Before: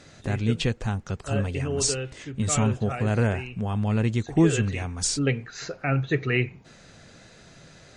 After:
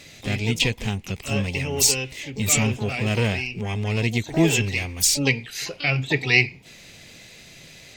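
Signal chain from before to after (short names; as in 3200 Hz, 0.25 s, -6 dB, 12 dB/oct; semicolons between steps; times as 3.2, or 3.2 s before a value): harmoniser +12 st -10 dB; resonant high shelf 1800 Hz +6.5 dB, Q 3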